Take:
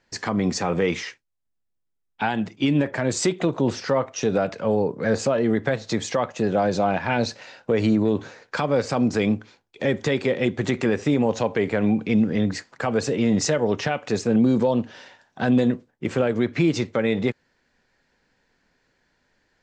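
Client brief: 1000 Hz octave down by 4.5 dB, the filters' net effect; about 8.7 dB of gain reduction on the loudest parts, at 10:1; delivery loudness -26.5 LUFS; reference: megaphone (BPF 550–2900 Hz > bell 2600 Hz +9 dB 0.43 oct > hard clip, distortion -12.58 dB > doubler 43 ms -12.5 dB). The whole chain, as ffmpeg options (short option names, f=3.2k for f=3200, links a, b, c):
-filter_complex "[0:a]equalizer=f=1k:t=o:g=-5.5,acompressor=threshold=-24dB:ratio=10,highpass=550,lowpass=2.9k,equalizer=f=2.6k:t=o:w=0.43:g=9,asoftclip=type=hard:threshold=-28dB,asplit=2[a][b];[b]adelay=43,volume=-12.5dB[c];[a][c]amix=inputs=2:normalize=0,volume=9dB"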